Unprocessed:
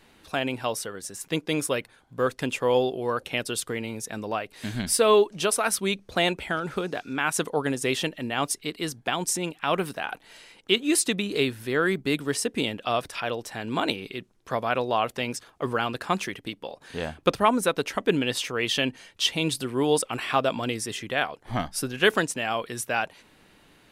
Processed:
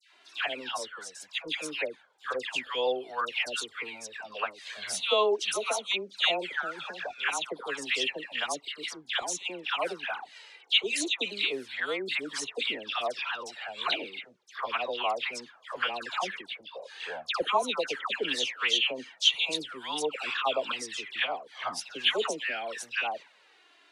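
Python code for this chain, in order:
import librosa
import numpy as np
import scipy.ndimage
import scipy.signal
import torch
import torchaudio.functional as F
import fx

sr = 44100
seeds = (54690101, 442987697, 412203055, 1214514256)

y = scipy.signal.sosfilt(scipy.signal.butter(2, 590.0, 'highpass', fs=sr, output='sos'), x)
y = fx.high_shelf(y, sr, hz=2100.0, db=7.5)
y = fx.env_flanger(y, sr, rest_ms=3.1, full_db=-20.0)
y = fx.air_absorb(y, sr, metres=110.0)
y = fx.dispersion(y, sr, late='lows', ms=135.0, hz=1400.0)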